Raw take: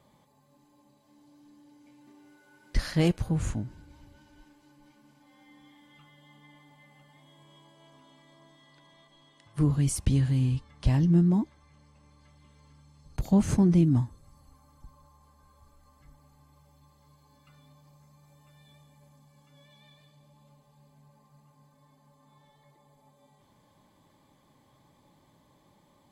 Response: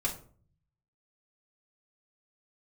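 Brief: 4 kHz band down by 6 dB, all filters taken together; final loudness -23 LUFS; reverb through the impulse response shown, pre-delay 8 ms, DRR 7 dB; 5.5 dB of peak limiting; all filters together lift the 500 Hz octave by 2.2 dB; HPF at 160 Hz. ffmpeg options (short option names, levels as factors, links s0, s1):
-filter_complex "[0:a]highpass=160,equalizer=f=500:t=o:g=3.5,equalizer=f=4000:t=o:g=-8.5,alimiter=limit=0.133:level=0:latency=1,asplit=2[s0][s1];[1:a]atrim=start_sample=2205,adelay=8[s2];[s1][s2]afir=irnorm=-1:irlink=0,volume=0.251[s3];[s0][s3]amix=inputs=2:normalize=0,volume=1.78"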